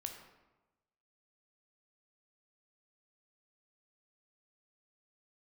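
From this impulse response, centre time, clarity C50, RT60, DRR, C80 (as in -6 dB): 28 ms, 6.5 dB, 1.1 s, 3.5 dB, 8.0 dB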